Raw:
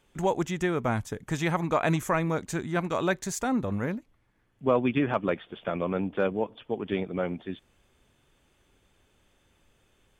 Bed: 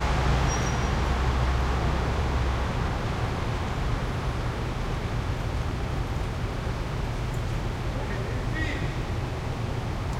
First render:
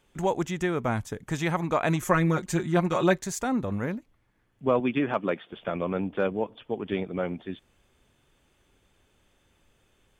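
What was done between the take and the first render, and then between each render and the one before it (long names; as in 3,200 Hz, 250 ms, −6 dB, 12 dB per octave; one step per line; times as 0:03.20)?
0:02.02–0:03.18: comb filter 5.6 ms, depth 97%
0:04.80–0:05.53: high-pass filter 150 Hz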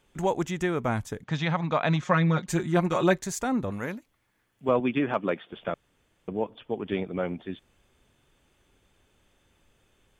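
0:01.24–0:02.48: loudspeaker in its box 120–5,200 Hz, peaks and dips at 150 Hz +5 dB, 360 Hz −9 dB, 3,700 Hz +6 dB
0:03.71–0:04.69: spectral tilt +2 dB per octave
0:05.74–0:06.28: fill with room tone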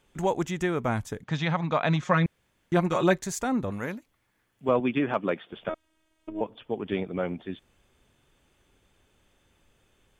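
0:02.26–0:02.72: fill with room tone
0:05.69–0:06.41: phases set to zero 317 Hz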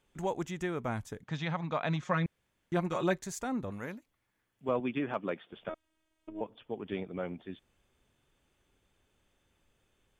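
level −7.5 dB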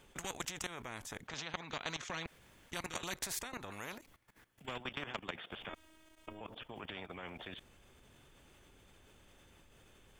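output level in coarse steps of 16 dB
every bin compressed towards the loudest bin 4 to 1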